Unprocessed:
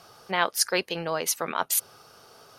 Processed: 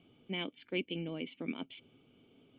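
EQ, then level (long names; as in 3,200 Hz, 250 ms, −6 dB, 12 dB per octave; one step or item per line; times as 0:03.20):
formant resonators in series i
+6.0 dB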